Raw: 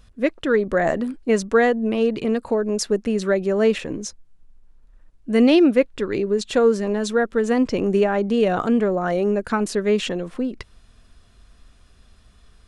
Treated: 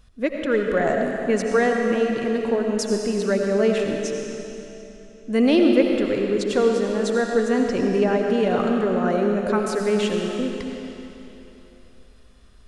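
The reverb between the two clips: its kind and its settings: algorithmic reverb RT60 3.2 s, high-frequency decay 0.95×, pre-delay 45 ms, DRR 1.5 dB; trim -3 dB

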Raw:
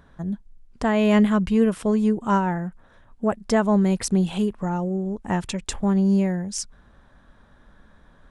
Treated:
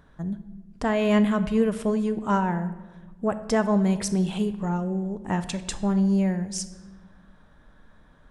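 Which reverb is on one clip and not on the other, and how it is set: simulated room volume 830 m³, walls mixed, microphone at 0.49 m; trim -2.5 dB

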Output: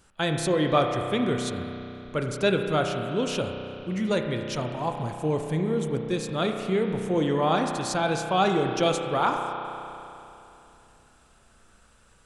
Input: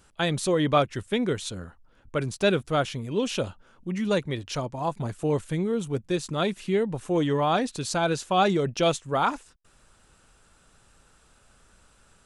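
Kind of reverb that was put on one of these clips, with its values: spring tank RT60 3 s, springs 32 ms, chirp 65 ms, DRR 3.5 dB; trim -1 dB

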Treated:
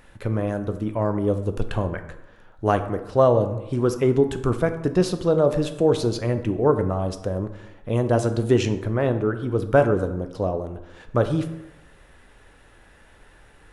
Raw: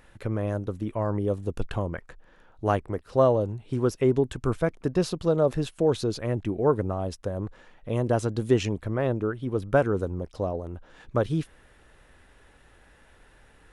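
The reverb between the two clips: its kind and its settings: plate-style reverb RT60 0.98 s, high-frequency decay 0.55×, DRR 8 dB; trim +3.5 dB

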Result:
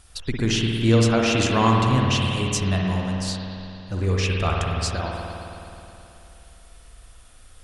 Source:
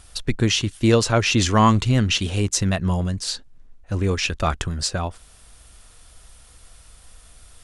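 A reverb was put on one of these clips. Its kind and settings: spring tank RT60 3 s, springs 53 ms, chirp 65 ms, DRR -1.5 dB; trim -4.5 dB

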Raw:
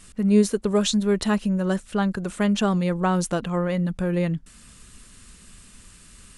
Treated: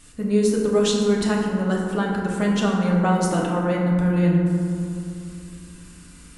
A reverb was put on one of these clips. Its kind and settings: FDN reverb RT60 2.6 s, low-frequency decay 1.25×, high-frequency decay 0.35×, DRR -3.5 dB; trim -2.5 dB

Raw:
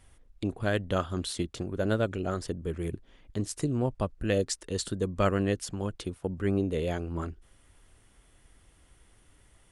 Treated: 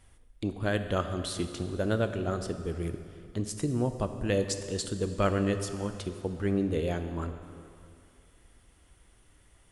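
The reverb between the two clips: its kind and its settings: plate-style reverb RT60 2.5 s, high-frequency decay 0.85×, DRR 8 dB; trim -1 dB

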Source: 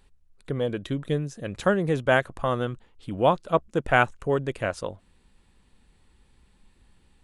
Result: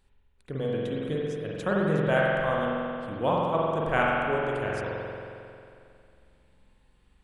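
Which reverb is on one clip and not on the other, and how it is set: spring tank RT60 2.5 s, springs 45 ms, chirp 75 ms, DRR -4.5 dB; trim -7.5 dB

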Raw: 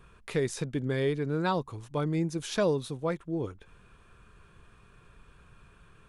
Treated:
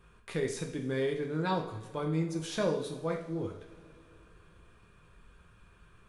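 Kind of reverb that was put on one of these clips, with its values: two-slope reverb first 0.53 s, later 3.5 s, from -20 dB, DRR 1.5 dB; trim -5 dB

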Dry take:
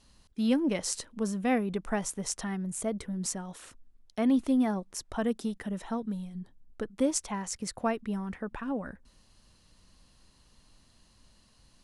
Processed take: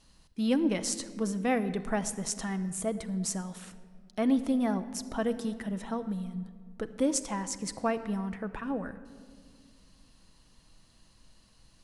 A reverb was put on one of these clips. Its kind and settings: simulated room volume 3600 m³, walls mixed, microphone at 0.64 m

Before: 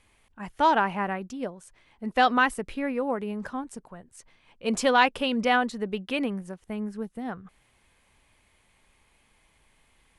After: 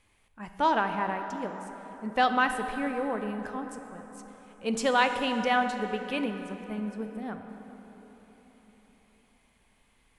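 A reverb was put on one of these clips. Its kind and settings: plate-style reverb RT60 4.5 s, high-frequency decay 0.55×, pre-delay 0 ms, DRR 6.5 dB; trim -3.5 dB

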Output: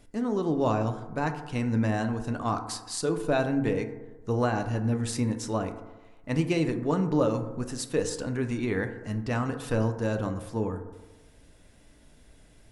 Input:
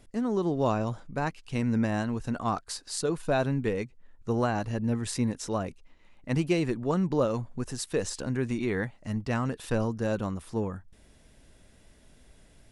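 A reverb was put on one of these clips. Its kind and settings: FDN reverb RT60 1.2 s, low-frequency decay 0.9×, high-frequency decay 0.3×, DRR 6.5 dB

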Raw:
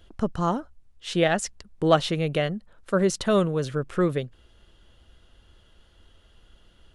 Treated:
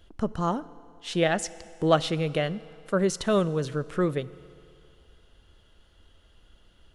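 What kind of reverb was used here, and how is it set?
FDN reverb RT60 2.6 s, low-frequency decay 0.75×, high-frequency decay 0.85×, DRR 17 dB; trim -2 dB

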